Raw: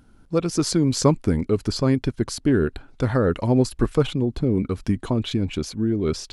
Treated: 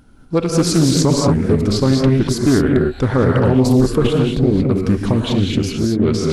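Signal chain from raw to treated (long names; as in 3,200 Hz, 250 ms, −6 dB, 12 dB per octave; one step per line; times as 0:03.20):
reverb whose tail is shaped and stops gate 250 ms rising, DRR 1 dB
boost into a limiter +8 dB
highs frequency-modulated by the lows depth 0.28 ms
level −3 dB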